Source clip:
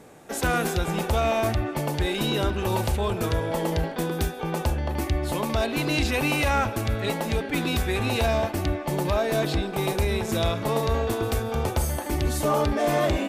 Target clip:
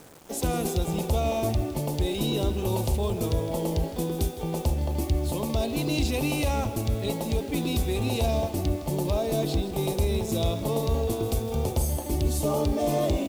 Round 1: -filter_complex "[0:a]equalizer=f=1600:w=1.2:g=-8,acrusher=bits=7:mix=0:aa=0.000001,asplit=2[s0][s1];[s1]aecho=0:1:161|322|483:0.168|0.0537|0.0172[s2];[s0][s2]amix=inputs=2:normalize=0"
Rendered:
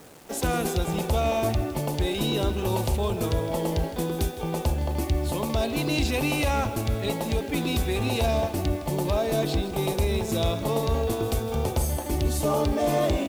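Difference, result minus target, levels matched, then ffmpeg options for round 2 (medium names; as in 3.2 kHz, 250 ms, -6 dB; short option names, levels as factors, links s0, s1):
2 kHz band +4.5 dB
-filter_complex "[0:a]equalizer=f=1600:w=1.2:g=-18,acrusher=bits=7:mix=0:aa=0.000001,asplit=2[s0][s1];[s1]aecho=0:1:161|322|483:0.168|0.0537|0.0172[s2];[s0][s2]amix=inputs=2:normalize=0"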